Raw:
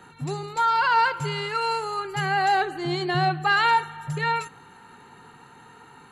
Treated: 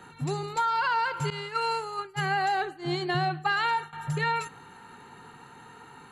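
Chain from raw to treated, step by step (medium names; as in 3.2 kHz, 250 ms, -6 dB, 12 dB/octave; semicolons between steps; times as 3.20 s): 1.30–3.93 s: expander -23 dBFS; compression 10:1, threshold -23 dBFS, peak gain reduction 8 dB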